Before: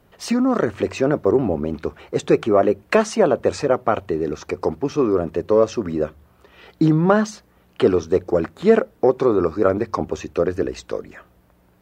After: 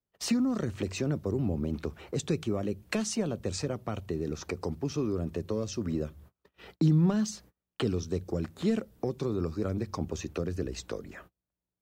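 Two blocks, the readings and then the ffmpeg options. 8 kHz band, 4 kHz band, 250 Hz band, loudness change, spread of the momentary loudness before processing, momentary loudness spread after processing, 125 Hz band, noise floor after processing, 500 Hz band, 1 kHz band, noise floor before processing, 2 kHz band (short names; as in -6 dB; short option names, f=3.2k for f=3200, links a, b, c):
-2.5 dB, -5.0 dB, -9.0 dB, -12.0 dB, 9 LU, 8 LU, -3.5 dB, under -85 dBFS, -16.5 dB, -18.5 dB, -57 dBFS, -13.5 dB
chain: -filter_complex "[0:a]agate=range=-33dB:threshold=-46dB:ratio=16:detection=peak,acrossover=split=210|3000[a][b][c];[b]acompressor=threshold=-29dB:ratio=10[d];[a][d][c]amix=inputs=3:normalize=0,equalizer=f=1.2k:w=0.32:g=-4,volume=-1.5dB"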